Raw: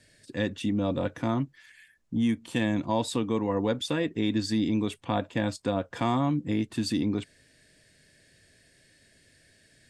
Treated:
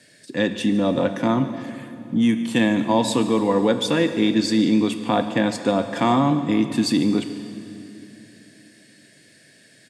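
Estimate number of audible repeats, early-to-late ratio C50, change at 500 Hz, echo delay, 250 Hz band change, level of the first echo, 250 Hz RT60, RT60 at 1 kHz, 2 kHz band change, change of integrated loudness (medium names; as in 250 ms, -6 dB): 1, 9.5 dB, +8.5 dB, 145 ms, +8.5 dB, -18.5 dB, 3.5 s, 2.6 s, +8.5 dB, +8.0 dB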